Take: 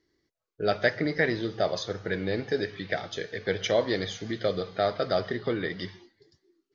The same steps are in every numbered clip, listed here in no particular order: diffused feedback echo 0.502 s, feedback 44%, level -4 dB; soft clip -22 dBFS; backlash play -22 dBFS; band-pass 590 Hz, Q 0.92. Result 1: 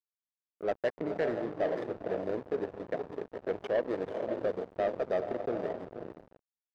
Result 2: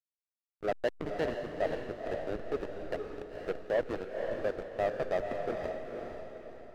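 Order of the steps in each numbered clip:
diffused feedback echo > backlash > band-pass > soft clip; band-pass > backlash > soft clip > diffused feedback echo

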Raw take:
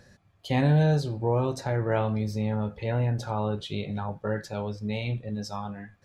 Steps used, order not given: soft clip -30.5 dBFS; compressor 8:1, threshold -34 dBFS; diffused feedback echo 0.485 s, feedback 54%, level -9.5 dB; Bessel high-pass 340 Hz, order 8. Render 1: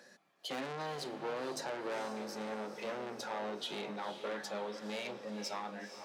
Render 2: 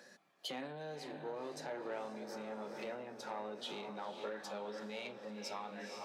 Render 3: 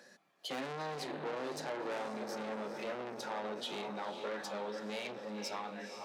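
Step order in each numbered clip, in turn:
soft clip > Bessel high-pass > compressor > diffused feedback echo; diffused feedback echo > compressor > soft clip > Bessel high-pass; diffused feedback echo > soft clip > Bessel high-pass > compressor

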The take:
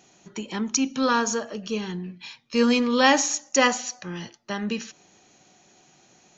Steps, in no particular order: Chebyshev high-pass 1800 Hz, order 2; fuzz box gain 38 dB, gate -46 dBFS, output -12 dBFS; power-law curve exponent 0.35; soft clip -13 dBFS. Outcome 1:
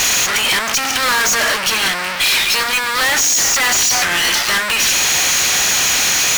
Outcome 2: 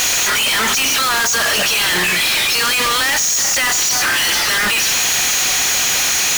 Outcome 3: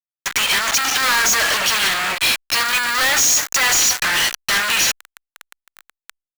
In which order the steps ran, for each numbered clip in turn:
power-law curve > soft clip > Chebyshev high-pass > fuzz box; Chebyshev high-pass > power-law curve > fuzz box > soft clip; fuzz box > Chebyshev high-pass > power-law curve > soft clip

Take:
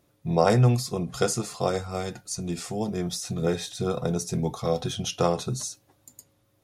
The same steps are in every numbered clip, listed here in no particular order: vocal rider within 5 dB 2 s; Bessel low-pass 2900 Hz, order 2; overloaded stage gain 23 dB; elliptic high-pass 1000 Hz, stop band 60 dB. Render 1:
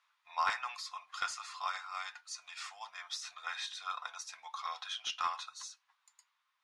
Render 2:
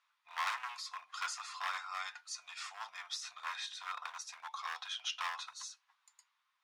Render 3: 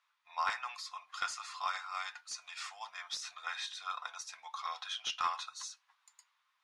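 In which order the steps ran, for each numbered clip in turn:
elliptic high-pass > overloaded stage > vocal rider > Bessel low-pass; Bessel low-pass > overloaded stage > vocal rider > elliptic high-pass; vocal rider > elliptic high-pass > overloaded stage > Bessel low-pass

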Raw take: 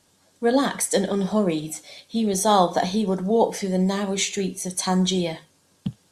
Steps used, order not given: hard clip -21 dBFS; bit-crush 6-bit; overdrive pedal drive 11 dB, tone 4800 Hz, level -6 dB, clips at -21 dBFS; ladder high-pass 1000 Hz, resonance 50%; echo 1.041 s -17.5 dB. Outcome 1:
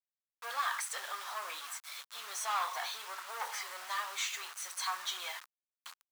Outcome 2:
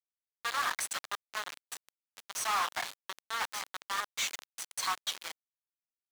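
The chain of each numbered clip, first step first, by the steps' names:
overdrive pedal > hard clip > echo > bit-crush > ladder high-pass; echo > hard clip > ladder high-pass > bit-crush > overdrive pedal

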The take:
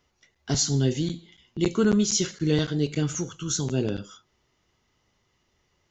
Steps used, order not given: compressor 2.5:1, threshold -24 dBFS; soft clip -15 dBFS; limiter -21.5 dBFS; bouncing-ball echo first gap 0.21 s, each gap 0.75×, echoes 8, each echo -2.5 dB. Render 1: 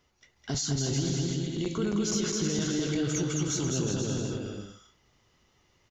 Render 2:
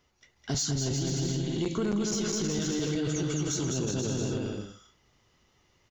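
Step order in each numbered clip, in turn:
limiter > bouncing-ball echo > compressor > soft clip; soft clip > bouncing-ball echo > limiter > compressor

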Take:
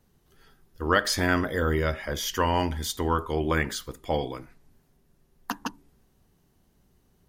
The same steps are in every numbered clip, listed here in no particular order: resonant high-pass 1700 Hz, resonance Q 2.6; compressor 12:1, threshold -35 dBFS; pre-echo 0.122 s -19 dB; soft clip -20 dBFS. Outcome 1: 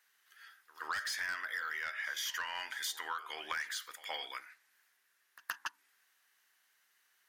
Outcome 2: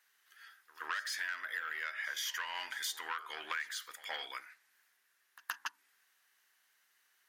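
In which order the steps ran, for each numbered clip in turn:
resonant high-pass > soft clip > compressor > pre-echo; soft clip > resonant high-pass > compressor > pre-echo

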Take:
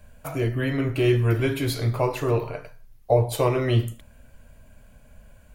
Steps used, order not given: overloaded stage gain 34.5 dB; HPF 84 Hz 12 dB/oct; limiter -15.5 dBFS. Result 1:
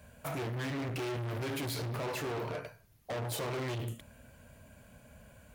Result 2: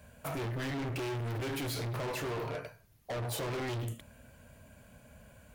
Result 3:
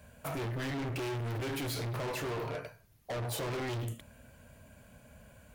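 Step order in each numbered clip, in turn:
limiter > overloaded stage > HPF; limiter > HPF > overloaded stage; HPF > limiter > overloaded stage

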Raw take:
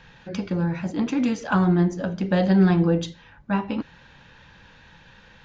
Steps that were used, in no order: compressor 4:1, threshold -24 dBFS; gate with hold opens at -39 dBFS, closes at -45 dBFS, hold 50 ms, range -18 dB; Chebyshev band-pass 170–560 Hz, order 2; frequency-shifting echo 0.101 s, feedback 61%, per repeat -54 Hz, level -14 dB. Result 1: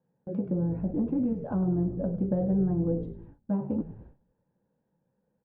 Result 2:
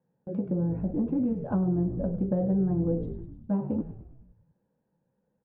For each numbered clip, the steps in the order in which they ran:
compressor > Chebyshev band-pass > frequency-shifting echo > gate with hold; Chebyshev band-pass > gate with hold > frequency-shifting echo > compressor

